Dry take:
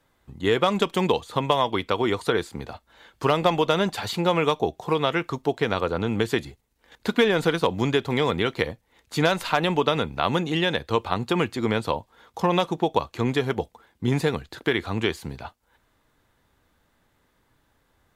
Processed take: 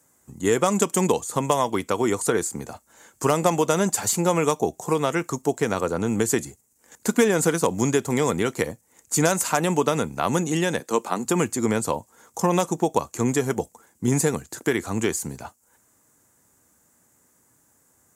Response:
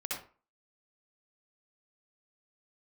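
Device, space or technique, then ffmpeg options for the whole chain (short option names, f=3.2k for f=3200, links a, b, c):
budget condenser microphone: -filter_complex "[0:a]highpass=94,highshelf=f=5.2k:t=q:w=3:g=12.5,asettb=1/sr,asplit=3[a][b][c];[a]atrim=end=10.804[d];[b]atrim=start=10.8:end=11.25,asetpts=PTS-STARTPTS,afade=t=in:d=0.004:c=qsin,afade=t=out:st=0.446:d=0.004:c=qsin,highpass=f=180:w=0.5412,highpass=f=180:w=1.3066[e];[c]atrim=start=11.246[f];[d][e]acrossfade=d=0.004:c1=hsin:c2=qsin[g];[g][f]acrossfade=d=0.004:c1=qsin:c2=hsin,equalizer=f=230:t=o:w=1.3:g=3"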